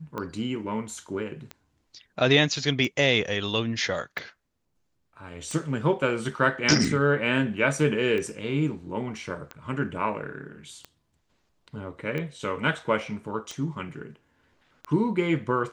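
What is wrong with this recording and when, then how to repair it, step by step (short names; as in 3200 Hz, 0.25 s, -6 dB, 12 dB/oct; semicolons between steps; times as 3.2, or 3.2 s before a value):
tick 45 rpm -20 dBFS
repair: de-click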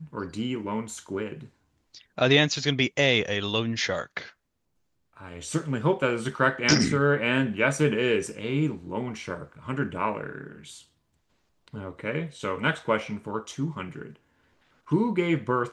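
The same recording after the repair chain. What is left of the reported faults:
none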